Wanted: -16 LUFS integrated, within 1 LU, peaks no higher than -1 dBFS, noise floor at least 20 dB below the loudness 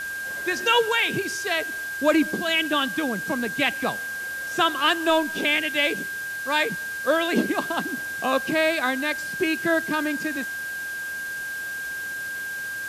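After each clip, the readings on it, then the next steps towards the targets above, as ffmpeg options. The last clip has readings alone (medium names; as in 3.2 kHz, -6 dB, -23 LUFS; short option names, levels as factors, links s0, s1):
steady tone 1.6 kHz; tone level -29 dBFS; noise floor -32 dBFS; noise floor target -44 dBFS; loudness -24.0 LUFS; peak level -7.5 dBFS; loudness target -16.0 LUFS
-> -af "bandreject=f=1600:w=30"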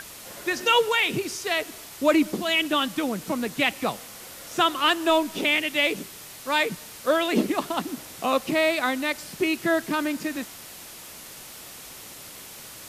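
steady tone not found; noise floor -43 dBFS; noise floor target -45 dBFS
-> -af "afftdn=nr=6:nf=-43"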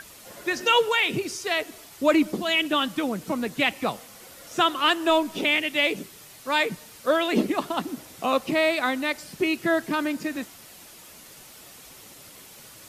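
noise floor -47 dBFS; loudness -24.5 LUFS; peak level -7.5 dBFS; loudness target -16.0 LUFS
-> -af "volume=2.66,alimiter=limit=0.891:level=0:latency=1"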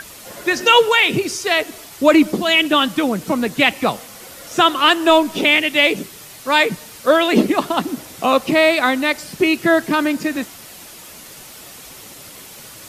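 loudness -16.0 LUFS; peak level -1.0 dBFS; noise floor -39 dBFS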